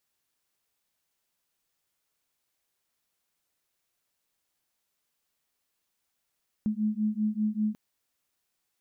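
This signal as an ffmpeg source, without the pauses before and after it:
-f lavfi -i "aevalsrc='0.0376*(sin(2*PI*211*t)+sin(2*PI*216.1*t))':d=1.09:s=44100"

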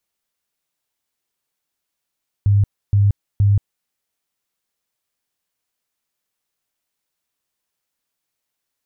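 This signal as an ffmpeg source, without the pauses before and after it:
-f lavfi -i "aevalsrc='0.299*sin(2*PI*101*mod(t,0.47))*lt(mod(t,0.47),18/101)':d=1.41:s=44100"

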